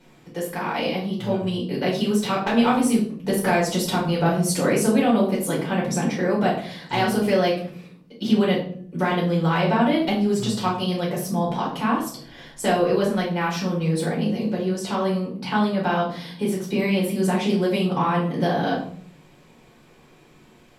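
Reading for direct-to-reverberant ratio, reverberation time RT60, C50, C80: -6.5 dB, 0.55 s, 5.5 dB, 10.0 dB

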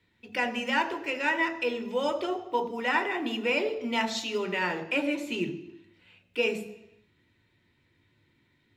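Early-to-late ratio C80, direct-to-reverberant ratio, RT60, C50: 13.5 dB, 5.0 dB, 0.85 s, 11.5 dB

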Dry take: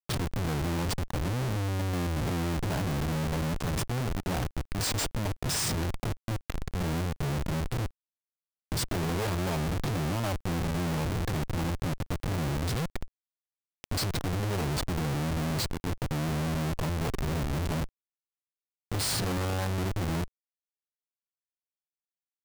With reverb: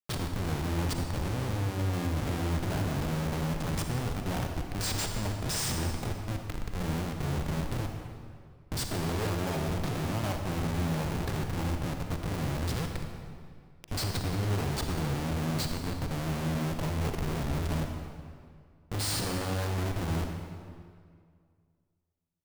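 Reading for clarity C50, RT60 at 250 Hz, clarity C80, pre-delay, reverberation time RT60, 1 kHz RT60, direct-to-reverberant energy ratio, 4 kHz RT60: 4.0 dB, 2.3 s, 5.0 dB, 37 ms, 2.1 s, 2.0 s, 3.5 dB, 1.6 s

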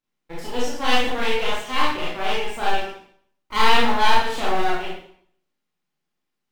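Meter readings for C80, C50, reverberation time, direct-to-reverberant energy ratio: 5.0 dB, 0.0 dB, 0.60 s, -7.0 dB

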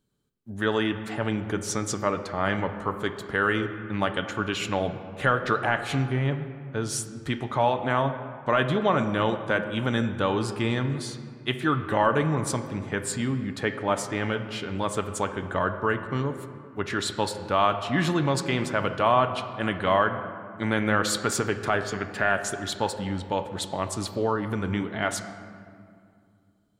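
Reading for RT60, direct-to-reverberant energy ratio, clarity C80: 2.3 s, 7.5 dB, 10.5 dB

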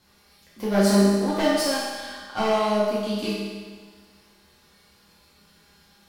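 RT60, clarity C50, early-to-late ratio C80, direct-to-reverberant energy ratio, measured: 1.5 s, -1.5 dB, 1.0 dB, -9.0 dB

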